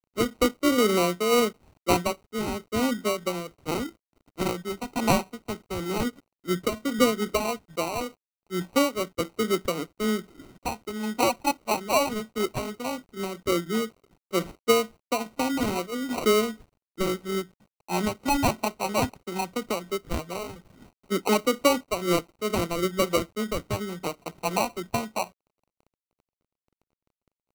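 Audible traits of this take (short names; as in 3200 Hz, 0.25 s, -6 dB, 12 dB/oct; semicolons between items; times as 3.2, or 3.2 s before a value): a quantiser's noise floor 10-bit, dither none; phasing stages 4, 0.15 Hz, lowest notch 530–1100 Hz; aliases and images of a low sample rate 1700 Hz, jitter 0%; noise-modulated level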